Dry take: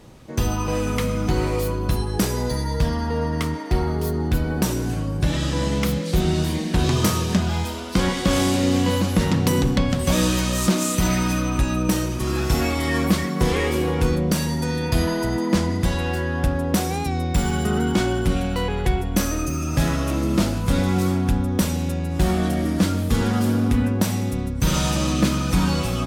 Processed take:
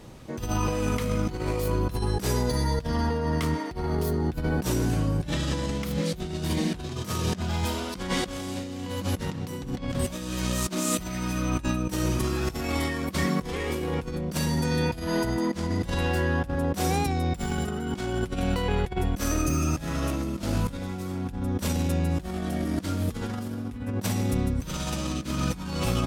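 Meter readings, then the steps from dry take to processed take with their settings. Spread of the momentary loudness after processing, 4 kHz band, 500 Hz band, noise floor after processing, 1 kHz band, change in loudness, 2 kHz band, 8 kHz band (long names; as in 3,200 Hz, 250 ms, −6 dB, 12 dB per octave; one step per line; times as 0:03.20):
6 LU, −6.5 dB, −5.5 dB, −38 dBFS, −5.0 dB, −6.0 dB, −5.5 dB, −6.0 dB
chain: compressor whose output falls as the input rises −24 dBFS, ratio −0.5
level −3 dB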